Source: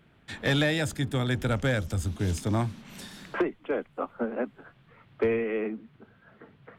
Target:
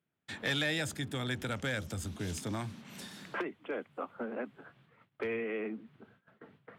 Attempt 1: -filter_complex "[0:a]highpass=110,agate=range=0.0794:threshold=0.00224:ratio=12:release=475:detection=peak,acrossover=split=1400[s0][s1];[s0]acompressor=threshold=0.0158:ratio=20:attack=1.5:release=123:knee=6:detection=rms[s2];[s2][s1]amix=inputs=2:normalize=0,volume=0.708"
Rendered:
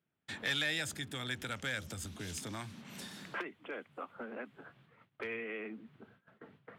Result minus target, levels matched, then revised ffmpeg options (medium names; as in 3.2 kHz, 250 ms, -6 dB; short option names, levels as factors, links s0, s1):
compression: peak gain reduction +7.5 dB
-filter_complex "[0:a]highpass=110,agate=range=0.0794:threshold=0.00224:ratio=12:release=475:detection=peak,acrossover=split=1400[s0][s1];[s0]acompressor=threshold=0.0398:ratio=20:attack=1.5:release=123:knee=6:detection=rms[s2];[s2][s1]amix=inputs=2:normalize=0,volume=0.708"